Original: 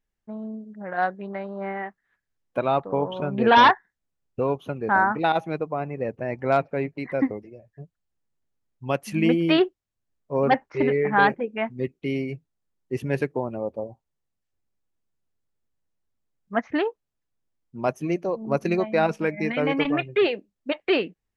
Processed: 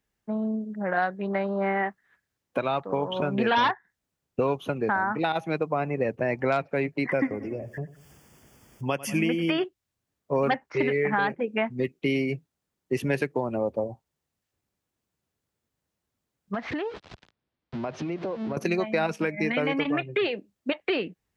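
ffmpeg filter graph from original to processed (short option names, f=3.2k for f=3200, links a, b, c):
-filter_complex "[0:a]asettb=1/sr,asplit=3[a][b][c];[a]atrim=end=7.094[d];[b]atrim=start=7.09:end=9.64,asetpts=PTS-STARTPTS,afade=t=in:d=0.004:c=qsin,afade=t=out:st=2.546:d=0.004:c=qsin,acompressor=mode=upward:threshold=-29dB:ratio=2.5:attack=3.2:release=140:knee=2.83:detection=peak,asuperstop=centerf=4000:order=8:qfactor=4.1,aecho=1:1:94|188|282|376:0.119|0.0594|0.0297|0.0149,atrim=end_sample=112455[e];[c]atrim=start=9.636[f];[d][e]acrossfade=d=0.004:c1=hsin:c2=qsin[g];[g][f]acrossfade=d=0.004:c1=qsin:c2=hsin,asettb=1/sr,asplit=3[h][i][j];[h]atrim=end=16.544[k];[i]atrim=start=16.54:end=18.57,asetpts=PTS-STARTPTS,afade=t=in:d=0.004:c=qsin,afade=t=out:st=2.026:d=0.004:c=qsin,aeval=exprs='val(0)+0.5*0.0168*sgn(val(0))':c=same,lowpass=f=4.4k:w=0.5412,lowpass=f=4.4k:w=1.3066,acompressor=threshold=-35dB:ratio=6:attack=3.2:release=140:knee=1:detection=peak[l];[j]atrim=start=18.566[m];[k][l]acrossfade=d=0.004:c1=hsin:c2=qsin[n];[n][m]acrossfade=d=0.004:c1=qsin:c2=hsin,highpass=60,acrossover=split=150|1500[o][p][q];[o]acompressor=threshold=-48dB:ratio=4[r];[p]acompressor=threshold=-30dB:ratio=4[s];[q]acompressor=threshold=-35dB:ratio=4[t];[r][s][t]amix=inputs=3:normalize=0,alimiter=limit=-20.5dB:level=0:latency=1:release=390,volume=6.5dB"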